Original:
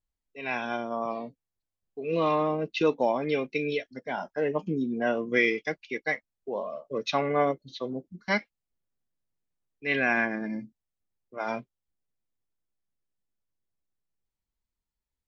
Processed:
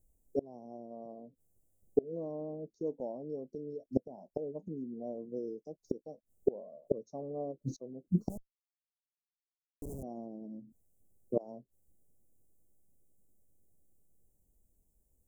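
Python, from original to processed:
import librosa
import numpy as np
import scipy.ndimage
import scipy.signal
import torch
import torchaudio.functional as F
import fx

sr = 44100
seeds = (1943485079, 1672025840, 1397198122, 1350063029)

y = fx.gate_flip(x, sr, shuts_db=-30.0, range_db=-28)
y = fx.schmitt(y, sr, flips_db=-51.0, at=(8.29, 10.03))
y = scipy.signal.sosfilt(scipy.signal.cheby2(4, 70, [1600.0, 3200.0], 'bandstop', fs=sr, output='sos'), y)
y = y * librosa.db_to_amplitude(16.0)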